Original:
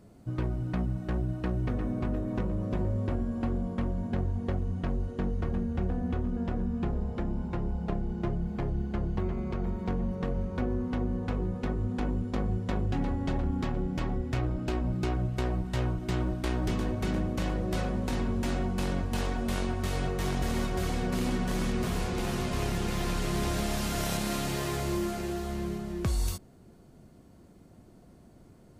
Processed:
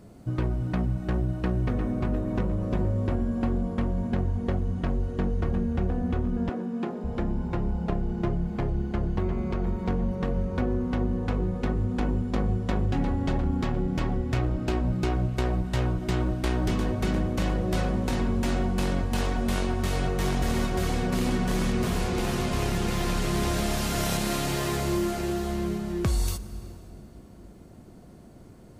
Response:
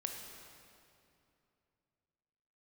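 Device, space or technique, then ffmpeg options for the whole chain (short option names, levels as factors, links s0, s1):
ducked reverb: -filter_complex "[0:a]asplit=3[s0][s1][s2];[1:a]atrim=start_sample=2205[s3];[s1][s3]afir=irnorm=-1:irlink=0[s4];[s2]apad=whole_len=1269859[s5];[s4][s5]sidechaincompress=threshold=0.0251:ratio=8:attack=16:release=536,volume=0.631[s6];[s0][s6]amix=inputs=2:normalize=0,asettb=1/sr,asplit=3[s7][s8][s9];[s7]atrim=end=6.494[s10];[s8]atrim=start=6.49:end=7.04,asetpts=PTS-STARTPTS,afade=t=in:d=0.004:c=qsin,afade=t=out:st=0.546:d=0.004:c=qsin,highpass=f=210:w=0.5412,highpass=f=210:w=1.3066[s11];[s9]atrim=start=7.036[s12];[s10][s11]acrossfade=d=0.004:c1=hsin:c2=qsin[s13];[s13][s12]acrossfade=d=0.004:c1=qsin:c2=hsin,volume=1.26"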